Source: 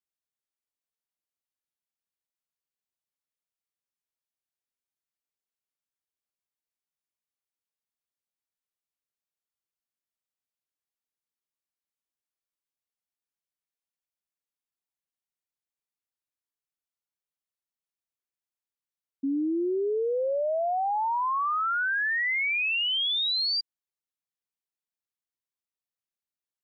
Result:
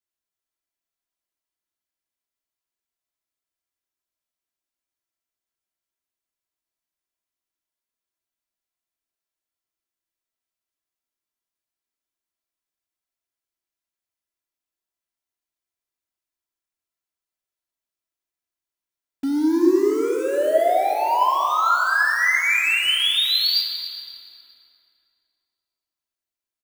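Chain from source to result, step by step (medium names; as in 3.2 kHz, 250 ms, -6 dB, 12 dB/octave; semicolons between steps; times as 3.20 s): in parallel at -7 dB: companded quantiser 2-bit; on the sum: comb 3 ms, depth 47%; plate-style reverb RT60 2.9 s, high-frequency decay 0.65×, DRR 0.5 dB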